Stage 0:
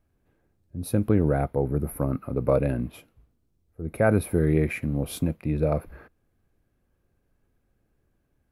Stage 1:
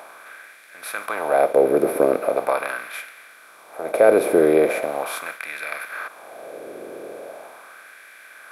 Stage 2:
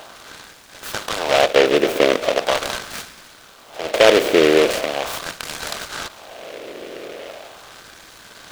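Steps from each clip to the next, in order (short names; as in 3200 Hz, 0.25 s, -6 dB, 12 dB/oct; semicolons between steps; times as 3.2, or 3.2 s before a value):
per-bin compression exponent 0.4; LFO high-pass sine 0.4 Hz 390–1800 Hz
noise-modulated delay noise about 2100 Hz, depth 0.12 ms; gain +2 dB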